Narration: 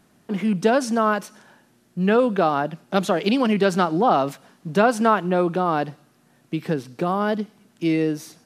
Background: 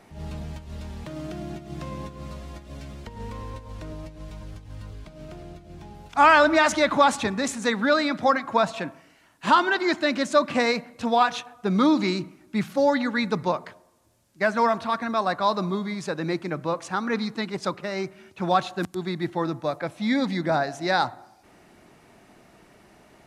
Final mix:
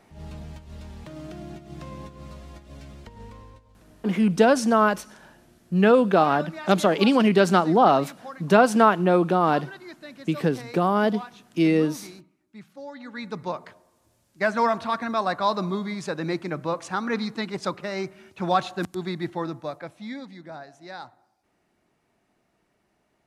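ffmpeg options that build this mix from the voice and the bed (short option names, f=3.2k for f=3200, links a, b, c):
-filter_complex "[0:a]adelay=3750,volume=1dB[a];[1:a]volume=14.5dB,afade=t=out:st=3:d=0.73:silence=0.177828,afade=t=in:st=12.94:d=1.13:silence=0.11885,afade=t=out:st=19.04:d=1.23:silence=0.158489[b];[a][b]amix=inputs=2:normalize=0"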